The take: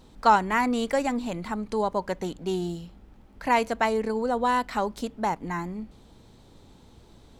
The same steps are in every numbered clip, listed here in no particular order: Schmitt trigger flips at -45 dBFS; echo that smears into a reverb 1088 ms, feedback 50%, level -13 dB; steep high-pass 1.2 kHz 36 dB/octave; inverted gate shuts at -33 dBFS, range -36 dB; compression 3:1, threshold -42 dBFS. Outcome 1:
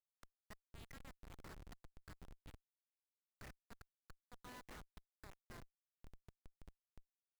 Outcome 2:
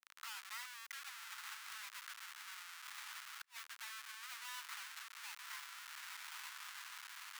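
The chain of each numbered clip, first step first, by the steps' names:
echo that smears into a reverb > compression > steep high-pass > inverted gate > Schmitt trigger; echo that smears into a reverb > compression > Schmitt trigger > steep high-pass > inverted gate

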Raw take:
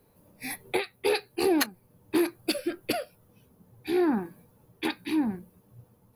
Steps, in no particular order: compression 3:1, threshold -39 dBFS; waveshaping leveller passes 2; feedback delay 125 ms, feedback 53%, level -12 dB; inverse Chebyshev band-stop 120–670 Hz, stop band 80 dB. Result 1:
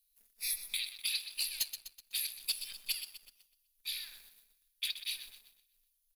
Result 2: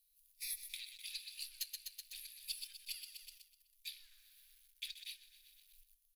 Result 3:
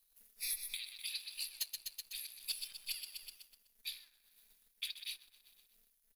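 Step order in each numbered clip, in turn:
inverse Chebyshev band-stop > compression > feedback delay > waveshaping leveller; feedback delay > waveshaping leveller > compression > inverse Chebyshev band-stop; feedback delay > compression > inverse Chebyshev band-stop > waveshaping leveller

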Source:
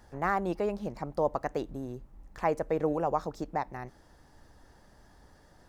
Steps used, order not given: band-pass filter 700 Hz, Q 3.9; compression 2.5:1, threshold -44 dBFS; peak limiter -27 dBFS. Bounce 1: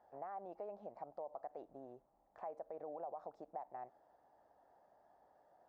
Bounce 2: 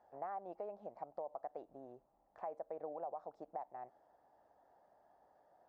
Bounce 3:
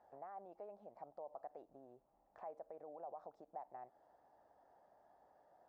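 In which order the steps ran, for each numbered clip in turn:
peak limiter > band-pass filter > compression; band-pass filter > peak limiter > compression; peak limiter > compression > band-pass filter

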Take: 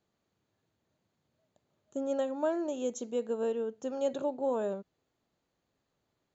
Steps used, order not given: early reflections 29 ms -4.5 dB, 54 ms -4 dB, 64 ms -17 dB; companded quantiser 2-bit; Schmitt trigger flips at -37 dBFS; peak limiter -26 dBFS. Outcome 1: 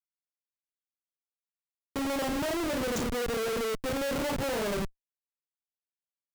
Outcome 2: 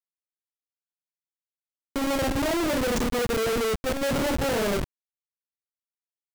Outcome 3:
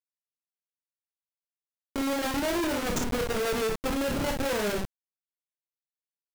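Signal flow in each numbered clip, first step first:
early reflections > companded quantiser > Schmitt trigger > peak limiter; peak limiter > early reflections > Schmitt trigger > companded quantiser; Schmitt trigger > early reflections > companded quantiser > peak limiter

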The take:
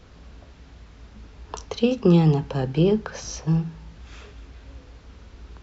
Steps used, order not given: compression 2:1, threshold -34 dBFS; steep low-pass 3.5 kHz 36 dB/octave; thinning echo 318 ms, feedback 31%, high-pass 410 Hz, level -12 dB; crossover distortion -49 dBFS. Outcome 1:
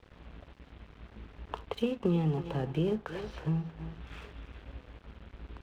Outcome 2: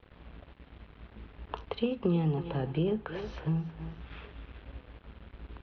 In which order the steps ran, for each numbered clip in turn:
thinning echo > compression > steep low-pass > crossover distortion; thinning echo > crossover distortion > compression > steep low-pass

